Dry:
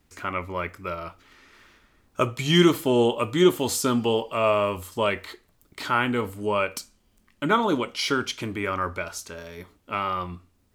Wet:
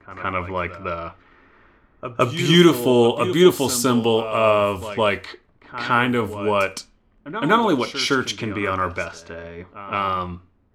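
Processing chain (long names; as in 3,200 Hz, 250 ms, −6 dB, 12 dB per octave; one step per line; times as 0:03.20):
echo ahead of the sound 163 ms −12.5 dB
low-pass that shuts in the quiet parts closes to 1,300 Hz, open at −22 dBFS
level +4.5 dB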